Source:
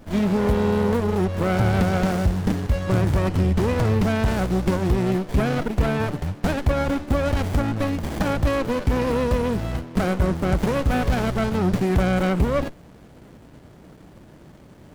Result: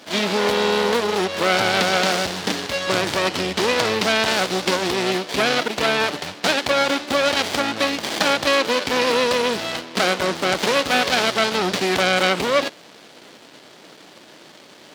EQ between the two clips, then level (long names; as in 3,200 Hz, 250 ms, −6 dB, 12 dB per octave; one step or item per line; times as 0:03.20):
high-pass filter 360 Hz 12 dB per octave
parametric band 4,100 Hz +14 dB 2 octaves
+4.0 dB